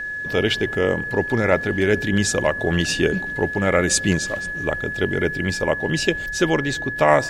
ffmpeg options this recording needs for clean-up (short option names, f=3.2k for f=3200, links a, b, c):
-af "bandreject=f=1.7k:w=30"